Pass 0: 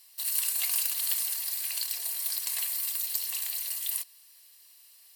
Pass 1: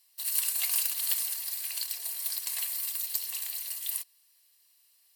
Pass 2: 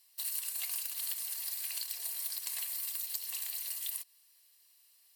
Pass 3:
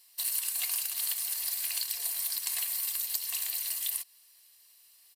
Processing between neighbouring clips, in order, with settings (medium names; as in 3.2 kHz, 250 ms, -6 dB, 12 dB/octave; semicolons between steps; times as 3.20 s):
upward expansion 1.5:1, over -46 dBFS; trim +1 dB
compression, threshold -34 dBFS, peak gain reduction 11 dB
resampled via 32 kHz; trim +6 dB